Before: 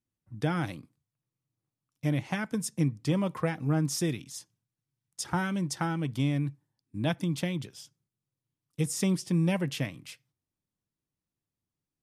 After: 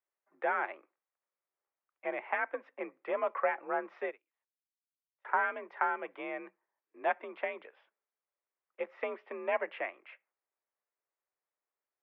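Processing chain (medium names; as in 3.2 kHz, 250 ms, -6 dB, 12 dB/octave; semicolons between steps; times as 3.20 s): mistuned SSB +51 Hz 470–2200 Hz; 4.06–5.25 s: upward expansion 2.5:1, over -57 dBFS; trim +3.5 dB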